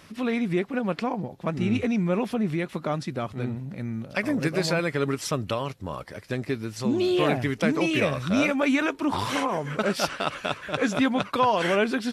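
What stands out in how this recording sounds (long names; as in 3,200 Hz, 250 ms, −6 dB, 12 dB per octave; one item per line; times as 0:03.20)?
background noise floor −46 dBFS
spectral slope −4.5 dB per octave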